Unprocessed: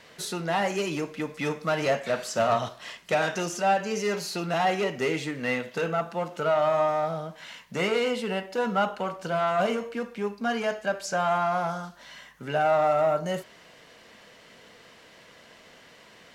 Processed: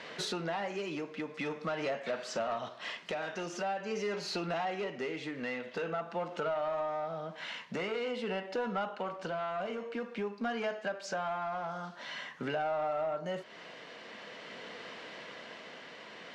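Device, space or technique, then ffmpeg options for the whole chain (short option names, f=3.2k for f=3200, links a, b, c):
AM radio: -af "highpass=190,lowpass=4.2k,acompressor=threshold=-40dB:ratio=4,asoftclip=type=tanh:threshold=-31.5dB,tremolo=f=0.47:d=0.29,volume=7dB"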